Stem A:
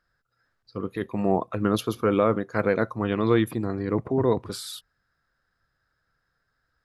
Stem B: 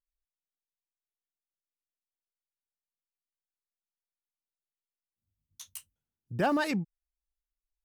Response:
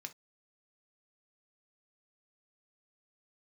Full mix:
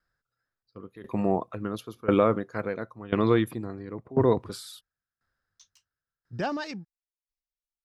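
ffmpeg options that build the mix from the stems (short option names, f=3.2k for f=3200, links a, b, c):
-filter_complex "[0:a]volume=2.5dB[a];[1:a]highshelf=f=7.8k:t=q:w=3:g=-13.5,volume=1dB[b];[a][b]amix=inputs=2:normalize=0,agate=range=-7dB:threshold=-39dB:ratio=16:detection=peak,aeval=exprs='val(0)*pow(10,-19*if(lt(mod(0.96*n/s,1),2*abs(0.96)/1000),1-mod(0.96*n/s,1)/(2*abs(0.96)/1000),(mod(0.96*n/s,1)-2*abs(0.96)/1000)/(1-2*abs(0.96)/1000))/20)':c=same"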